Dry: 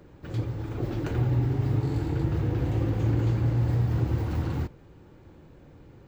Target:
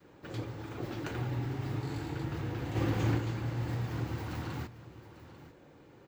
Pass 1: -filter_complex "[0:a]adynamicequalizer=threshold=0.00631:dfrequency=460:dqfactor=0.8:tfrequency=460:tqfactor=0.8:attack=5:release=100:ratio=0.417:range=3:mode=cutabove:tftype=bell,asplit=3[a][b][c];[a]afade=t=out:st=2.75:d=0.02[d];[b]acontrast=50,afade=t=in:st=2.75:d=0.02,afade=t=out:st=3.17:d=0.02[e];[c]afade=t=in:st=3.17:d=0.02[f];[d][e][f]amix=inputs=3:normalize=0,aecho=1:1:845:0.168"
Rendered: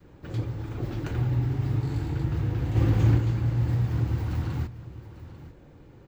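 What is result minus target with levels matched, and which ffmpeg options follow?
500 Hz band -6.5 dB
-filter_complex "[0:a]adynamicequalizer=threshold=0.00631:dfrequency=460:dqfactor=0.8:tfrequency=460:tqfactor=0.8:attack=5:release=100:ratio=0.417:range=3:mode=cutabove:tftype=bell,highpass=f=360:p=1,asplit=3[a][b][c];[a]afade=t=out:st=2.75:d=0.02[d];[b]acontrast=50,afade=t=in:st=2.75:d=0.02,afade=t=out:st=3.17:d=0.02[e];[c]afade=t=in:st=3.17:d=0.02[f];[d][e][f]amix=inputs=3:normalize=0,aecho=1:1:845:0.168"

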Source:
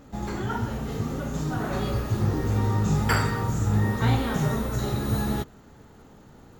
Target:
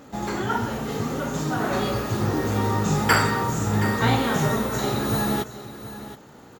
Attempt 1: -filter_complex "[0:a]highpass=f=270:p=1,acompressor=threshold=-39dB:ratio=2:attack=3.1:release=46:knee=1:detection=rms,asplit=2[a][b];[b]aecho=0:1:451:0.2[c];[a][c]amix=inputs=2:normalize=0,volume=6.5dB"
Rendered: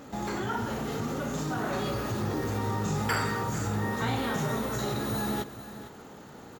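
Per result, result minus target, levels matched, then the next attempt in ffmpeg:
compressor: peak gain reduction +11.5 dB; echo 0.271 s early
-filter_complex "[0:a]highpass=f=270:p=1,asplit=2[a][b];[b]aecho=0:1:451:0.2[c];[a][c]amix=inputs=2:normalize=0,volume=6.5dB"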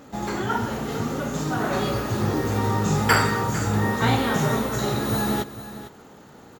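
echo 0.271 s early
-filter_complex "[0:a]highpass=f=270:p=1,asplit=2[a][b];[b]aecho=0:1:722:0.2[c];[a][c]amix=inputs=2:normalize=0,volume=6.5dB"

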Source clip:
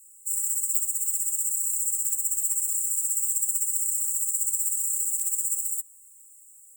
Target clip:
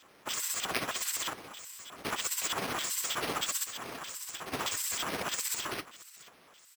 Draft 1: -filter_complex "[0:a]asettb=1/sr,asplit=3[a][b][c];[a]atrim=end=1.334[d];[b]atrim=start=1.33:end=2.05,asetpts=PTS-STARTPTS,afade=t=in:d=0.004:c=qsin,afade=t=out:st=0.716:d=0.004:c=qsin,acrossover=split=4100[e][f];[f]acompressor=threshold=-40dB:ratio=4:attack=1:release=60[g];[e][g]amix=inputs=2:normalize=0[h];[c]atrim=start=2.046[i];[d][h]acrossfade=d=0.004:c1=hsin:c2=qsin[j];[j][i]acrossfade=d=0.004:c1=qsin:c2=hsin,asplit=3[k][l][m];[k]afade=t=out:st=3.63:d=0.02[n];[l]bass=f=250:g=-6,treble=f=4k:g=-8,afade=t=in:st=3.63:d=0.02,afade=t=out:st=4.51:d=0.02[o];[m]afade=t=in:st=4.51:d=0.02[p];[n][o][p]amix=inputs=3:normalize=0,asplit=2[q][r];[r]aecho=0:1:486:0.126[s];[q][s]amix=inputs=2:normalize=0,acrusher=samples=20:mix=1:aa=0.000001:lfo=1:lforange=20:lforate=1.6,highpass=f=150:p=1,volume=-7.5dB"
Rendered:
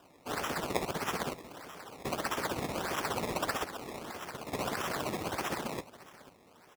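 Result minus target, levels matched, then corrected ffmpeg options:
decimation with a swept rate: distortion +18 dB
-filter_complex "[0:a]asettb=1/sr,asplit=3[a][b][c];[a]atrim=end=1.334[d];[b]atrim=start=1.33:end=2.05,asetpts=PTS-STARTPTS,afade=t=in:d=0.004:c=qsin,afade=t=out:st=0.716:d=0.004:c=qsin,acrossover=split=4100[e][f];[f]acompressor=threshold=-40dB:ratio=4:attack=1:release=60[g];[e][g]amix=inputs=2:normalize=0[h];[c]atrim=start=2.046[i];[d][h]acrossfade=d=0.004:c1=hsin:c2=qsin[j];[j][i]acrossfade=d=0.004:c1=qsin:c2=hsin,asplit=3[k][l][m];[k]afade=t=out:st=3.63:d=0.02[n];[l]bass=f=250:g=-6,treble=f=4k:g=-8,afade=t=in:st=3.63:d=0.02,afade=t=out:st=4.51:d=0.02[o];[m]afade=t=in:st=4.51:d=0.02[p];[n][o][p]amix=inputs=3:normalize=0,asplit=2[q][r];[r]aecho=0:1:486:0.126[s];[q][s]amix=inputs=2:normalize=0,acrusher=samples=4:mix=1:aa=0.000001:lfo=1:lforange=4:lforate=1.6,highpass=f=150:p=1,volume=-7.5dB"

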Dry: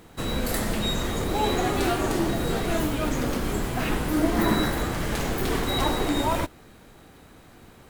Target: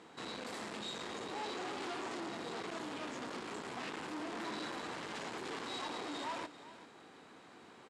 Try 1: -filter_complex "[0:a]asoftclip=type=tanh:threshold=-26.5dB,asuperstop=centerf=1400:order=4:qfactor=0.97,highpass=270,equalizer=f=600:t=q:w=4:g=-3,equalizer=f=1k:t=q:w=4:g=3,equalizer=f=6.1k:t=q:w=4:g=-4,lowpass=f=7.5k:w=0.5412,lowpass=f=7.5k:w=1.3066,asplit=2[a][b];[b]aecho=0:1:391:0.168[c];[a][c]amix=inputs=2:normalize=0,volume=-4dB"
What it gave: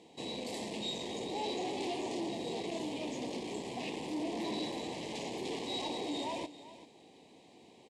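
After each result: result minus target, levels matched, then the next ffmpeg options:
1000 Hz band -3.0 dB; soft clip: distortion -4 dB
-filter_complex "[0:a]asoftclip=type=tanh:threshold=-26.5dB,highpass=270,equalizer=f=600:t=q:w=4:g=-3,equalizer=f=1k:t=q:w=4:g=3,equalizer=f=6.1k:t=q:w=4:g=-4,lowpass=f=7.5k:w=0.5412,lowpass=f=7.5k:w=1.3066,asplit=2[a][b];[b]aecho=0:1:391:0.168[c];[a][c]amix=inputs=2:normalize=0,volume=-4dB"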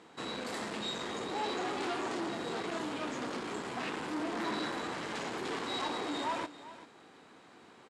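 soft clip: distortion -4 dB
-filter_complex "[0:a]asoftclip=type=tanh:threshold=-34.5dB,highpass=270,equalizer=f=600:t=q:w=4:g=-3,equalizer=f=1k:t=q:w=4:g=3,equalizer=f=6.1k:t=q:w=4:g=-4,lowpass=f=7.5k:w=0.5412,lowpass=f=7.5k:w=1.3066,asplit=2[a][b];[b]aecho=0:1:391:0.168[c];[a][c]amix=inputs=2:normalize=0,volume=-4dB"

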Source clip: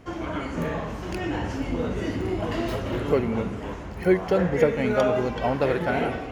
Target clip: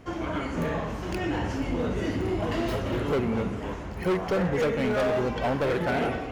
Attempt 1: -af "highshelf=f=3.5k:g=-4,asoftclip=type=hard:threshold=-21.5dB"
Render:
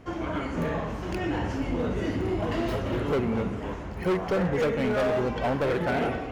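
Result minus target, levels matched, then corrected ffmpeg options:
8000 Hz band -2.5 dB
-af "asoftclip=type=hard:threshold=-21.5dB"

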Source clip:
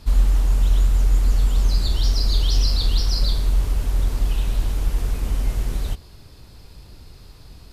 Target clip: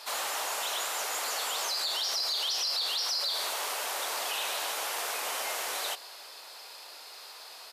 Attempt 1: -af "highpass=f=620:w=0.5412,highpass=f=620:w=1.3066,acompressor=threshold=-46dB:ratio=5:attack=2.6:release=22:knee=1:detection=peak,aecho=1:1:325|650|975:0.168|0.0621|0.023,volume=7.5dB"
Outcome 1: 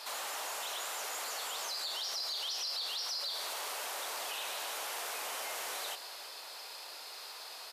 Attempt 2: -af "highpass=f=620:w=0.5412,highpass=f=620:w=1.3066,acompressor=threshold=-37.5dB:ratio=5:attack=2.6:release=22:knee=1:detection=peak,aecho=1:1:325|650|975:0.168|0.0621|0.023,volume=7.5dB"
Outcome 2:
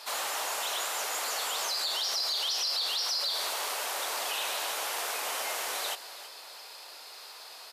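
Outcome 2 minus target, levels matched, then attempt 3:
echo-to-direct +9 dB
-af "highpass=f=620:w=0.5412,highpass=f=620:w=1.3066,acompressor=threshold=-37.5dB:ratio=5:attack=2.6:release=22:knee=1:detection=peak,aecho=1:1:325|650:0.0596|0.022,volume=7.5dB"

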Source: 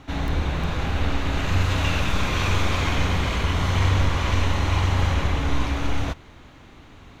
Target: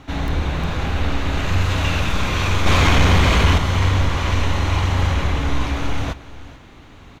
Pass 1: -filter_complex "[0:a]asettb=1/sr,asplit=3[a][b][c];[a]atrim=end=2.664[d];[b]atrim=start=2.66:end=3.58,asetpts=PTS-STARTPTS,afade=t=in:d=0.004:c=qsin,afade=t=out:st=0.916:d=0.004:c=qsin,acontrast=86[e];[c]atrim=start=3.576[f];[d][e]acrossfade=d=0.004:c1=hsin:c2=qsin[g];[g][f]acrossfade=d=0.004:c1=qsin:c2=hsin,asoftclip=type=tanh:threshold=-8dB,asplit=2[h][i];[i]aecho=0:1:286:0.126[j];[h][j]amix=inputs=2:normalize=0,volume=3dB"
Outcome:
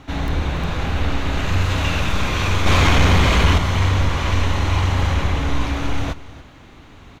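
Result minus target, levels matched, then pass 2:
echo 0.148 s early
-filter_complex "[0:a]asettb=1/sr,asplit=3[a][b][c];[a]atrim=end=2.664[d];[b]atrim=start=2.66:end=3.58,asetpts=PTS-STARTPTS,afade=t=in:d=0.004:c=qsin,afade=t=out:st=0.916:d=0.004:c=qsin,acontrast=86[e];[c]atrim=start=3.576[f];[d][e]acrossfade=d=0.004:c1=hsin:c2=qsin[g];[g][f]acrossfade=d=0.004:c1=qsin:c2=hsin,asoftclip=type=tanh:threshold=-8dB,asplit=2[h][i];[i]aecho=0:1:434:0.126[j];[h][j]amix=inputs=2:normalize=0,volume=3dB"

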